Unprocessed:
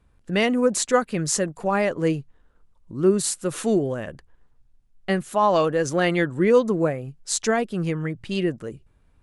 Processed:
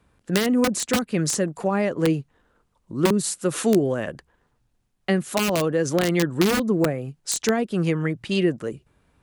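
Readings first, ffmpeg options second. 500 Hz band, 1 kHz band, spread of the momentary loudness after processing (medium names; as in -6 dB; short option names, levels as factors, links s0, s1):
-1.5 dB, -4.5 dB, 8 LU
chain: -filter_complex "[0:a]aeval=exprs='(mod(3.76*val(0)+1,2)-1)/3.76':c=same,highpass=f=150:p=1,acrossover=split=360[s0][s1];[s1]acompressor=threshold=0.0398:ratio=6[s2];[s0][s2]amix=inputs=2:normalize=0,volume=1.78"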